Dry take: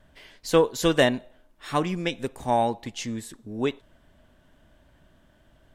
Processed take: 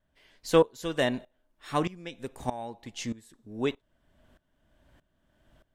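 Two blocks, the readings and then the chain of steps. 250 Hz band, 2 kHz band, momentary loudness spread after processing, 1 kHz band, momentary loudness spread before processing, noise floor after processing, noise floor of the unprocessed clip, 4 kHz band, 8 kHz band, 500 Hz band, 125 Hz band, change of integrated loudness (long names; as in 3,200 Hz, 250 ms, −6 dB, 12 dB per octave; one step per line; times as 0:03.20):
−5.0 dB, −6.0 dB, 18 LU, −7.0 dB, 15 LU, −75 dBFS, −61 dBFS, −6.5 dB, −7.0 dB, −4.0 dB, −5.0 dB, −5.0 dB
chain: tremolo with a ramp in dB swelling 1.6 Hz, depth 19 dB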